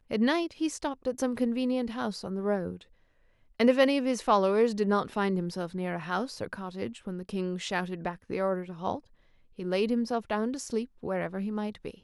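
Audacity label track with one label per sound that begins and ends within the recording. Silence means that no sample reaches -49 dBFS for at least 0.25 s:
3.600000	9.000000	sound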